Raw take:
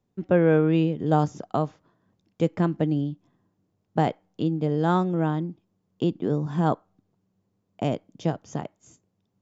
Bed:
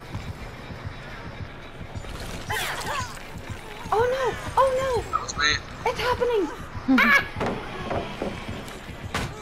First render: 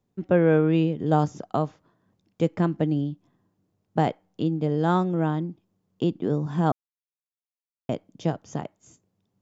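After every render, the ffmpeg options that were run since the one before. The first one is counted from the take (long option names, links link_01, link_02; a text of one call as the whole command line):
ffmpeg -i in.wav -filter_complex "[0:a]asplit=3[link_01][link_02][link_03];[link_01]atrim=end=6.72,asetpts=PTS-STARTPTS,afade=type=out:start_time=6.716:duration=0.004:curve=hsin[link_04];[link_02]atrim=start=6.72:end=7.89,asetpts=PTS-STARTPTS,volume=0[link_05];[link_03]atrim=start=7.89,asetpts=PTS-STARTPTS,afade=type=in:duration=0.004:curve=hsin[link_06];[link_04][link_05][link_06]concat=n=3:v=0:a=1" out.wav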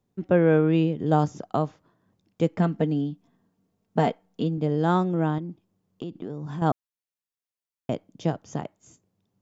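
ffmpeg -i in.wav -filter_complex "[0:a]asettb=1/sr,asplit=3[link_01][link_02][link_03];[link_01]atrim=end=2.584[link_04];[link_02]atrim=start=2.58:end=4.58,asetpts=PTS-STARTPTS,afade=type=in:duration=0.004:curve=qsin,afade=type=out:start_time=1.996:duration=0.004:curve=qsin,aecho=1:1:4.4:0.53,atrim=end_sample=88200[link_05];[link_03]atrim=start=4.576[link_06];[link_04][link_05]acrossfade=duration=0.004:curve1=hsin:curve2=qsin[link_07];[link_07][link_06]acrossfade=duration=0.004:curve1=qsin:curve2=hsin,asettb=1/sr,asplit=3[link_08][link_09][link_10];[link_08]atrim=end=5.384[link_11];[link_09]atrim=start=5.38:end=6.62,asetpts=PTS-STARTPTS,afade=type=in:duration=0.004:curve=qsin,afade=type=out:start_time=1.236:duration=0.004:curve=qsin,acompressor=threshold=-30dB:ratio=6:attack=3.2:release=140:knee=1:detection=peak[link_12];[link_10]atrim=start=6.616[link_13];[link_11][link_12]acrossfade=duration=0.004:curve1=hsin:curve2=qsin[link_14];[link_14][link_13]acrossfade=duration=0.004:curve1=qsin:curve2=hsin" out.wav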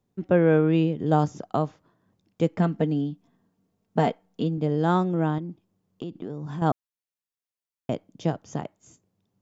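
ffmpeg -i in.wav -af anull out.wav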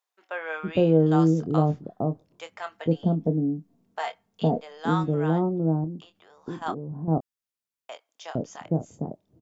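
ffmpeg -i in.wav -filter_complex "[0:a]asplit=2[link_01][link_02];[link_02]adelay=25,volume=-10dB[link_03];[link_01][link_03]amix=inputs=2:normalize=0,acrossover=split=770[link_04][link_05];[link_04]adelay=460[link_06];[link_06][link_05]amix=inputs=2:normalize=0" out.wav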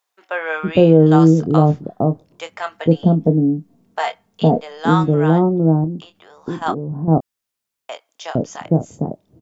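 ffmpeg -i in.wav -af "volume=9.5dB,alimiter=limit=-1dB:level=0:latency=1" out.wav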